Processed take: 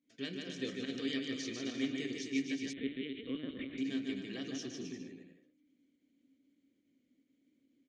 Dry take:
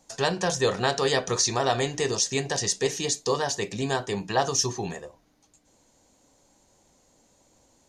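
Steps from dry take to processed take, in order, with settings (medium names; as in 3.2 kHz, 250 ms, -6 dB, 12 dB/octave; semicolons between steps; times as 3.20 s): volume shaper 141 bpm, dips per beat 1, -12 dB, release 106 ms; bouncing-ball echo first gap 150 ms, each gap 0.75×, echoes 5; 2.73–3.78 s: LPC vocoder at 8 kHz pitch kept; vowel filter i; tape noise reduction on one side only decoder only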